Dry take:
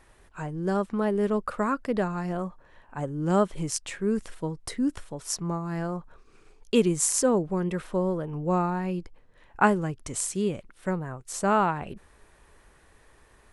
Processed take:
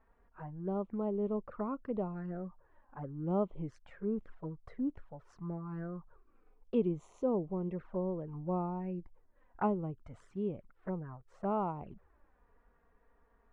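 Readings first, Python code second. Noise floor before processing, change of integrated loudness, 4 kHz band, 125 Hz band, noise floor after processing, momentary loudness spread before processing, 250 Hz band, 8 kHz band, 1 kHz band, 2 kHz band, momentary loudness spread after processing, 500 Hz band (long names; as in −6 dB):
−59 dBFS, −10.0 dB, below −25 dB, −9.0 dB, −70 dBFS, 12 LU, −9.0 dB, below −40 dB, −12.0 dB, −21.5 dB, 13 LU, −9.0 dB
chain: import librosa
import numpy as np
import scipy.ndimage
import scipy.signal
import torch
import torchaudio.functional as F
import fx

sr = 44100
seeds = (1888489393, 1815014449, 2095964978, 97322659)

y = fx.env_flanger(x, sr, rest_ms=4.7, full_db=-24.0)
y = scipy.signal.sosfilt(scipy.signal.cheby1(2, 1.0, 1200.0, 'lowpass', fs=sr, output='sos'), y)
y = F.gain(torch.from_numpy(y), -7.5).numpy()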